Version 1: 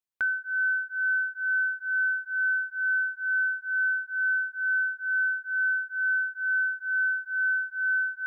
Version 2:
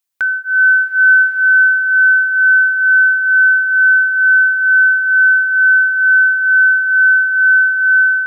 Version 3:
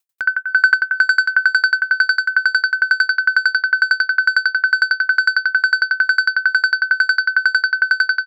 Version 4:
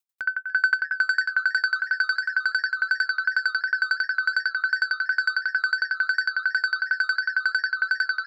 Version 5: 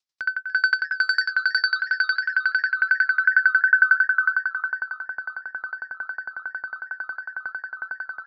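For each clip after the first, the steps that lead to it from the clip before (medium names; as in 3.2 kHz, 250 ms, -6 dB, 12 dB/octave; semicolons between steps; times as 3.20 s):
level rider gain up to 7 dB; tilt EQ +2 dB/octave; swelling reverb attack 1180 ms, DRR 3.5 dB; trim +8.5 dB
saturation -7 dBFS, distortion -20 dB; on a send: feedback delay 528 ms, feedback 51%, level -3.5 dB; on the sum: sawtooth tremolo in dB decaying 11 Hz, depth 32 dB; trim +7.5 dB
modulated delay 287 ms, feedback 69%, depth 196 cents, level -18 dB; trim -8.5 dB
low-pass sweep 5.2 kHz -> 820 Hz, 1.33–5.12 s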